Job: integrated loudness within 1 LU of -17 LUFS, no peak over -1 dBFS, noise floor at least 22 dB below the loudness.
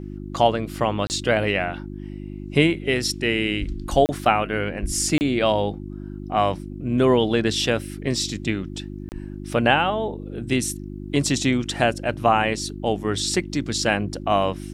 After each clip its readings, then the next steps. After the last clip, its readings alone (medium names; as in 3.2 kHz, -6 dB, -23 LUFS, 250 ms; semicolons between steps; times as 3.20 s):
dropouts 4; longest dropout 29 ms; hum 50 Hz; highest harmonic 350 Hz; hum level -32 dBFS; loudness -22.5 LUFS; peak level -2.5 dBFS; loudness target -17.0 LUFS
-> interpolate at 1.07/4.06/5.18/9.09 s, 29 ms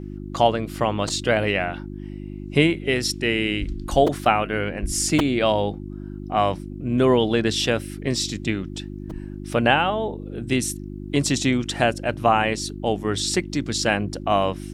dropouts 0; hum 50 Hz; highest harmonic 350 Hz; hum level -32 dBFS
-> de-hum 50 Hz, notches 7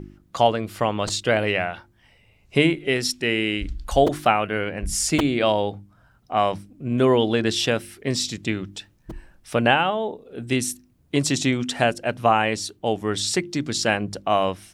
hum not found; loudness -22.5 LUFS; peak level -3.0 dBFS; loudness target -17.0 LUFS
-> trim +5.5 dB; peak limiter -1 dBFS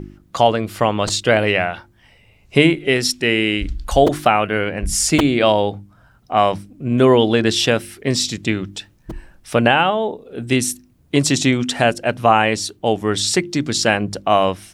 loudness -17.5 LUFS; peak level -1.0 dBFS; noise floor -54 dBFS